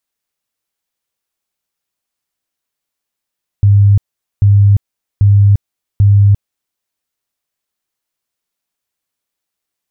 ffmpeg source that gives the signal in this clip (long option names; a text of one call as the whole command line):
ffmpeg -f lavfi -i "aevalsrc='0.631*sin(2*PI*101*mod(t,0.79))*lt(mod(t,0.79),35/101)':duration=3.16:sample_rate=44100" out.wav